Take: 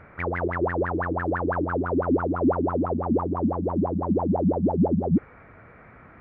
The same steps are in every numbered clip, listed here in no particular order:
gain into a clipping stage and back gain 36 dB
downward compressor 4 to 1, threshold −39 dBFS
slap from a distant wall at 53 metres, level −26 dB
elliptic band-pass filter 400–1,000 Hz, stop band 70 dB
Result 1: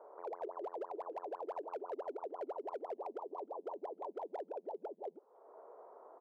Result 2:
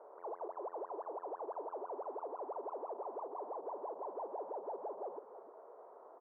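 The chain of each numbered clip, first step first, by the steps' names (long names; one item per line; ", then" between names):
downward compressor, then elliptic band-pass filter, then gain into a clipping stage and back, then slap from a distant wall
slap from a distant wall, then gain into a clipping stage and back, then downward compressor, then elliptic band-pass filter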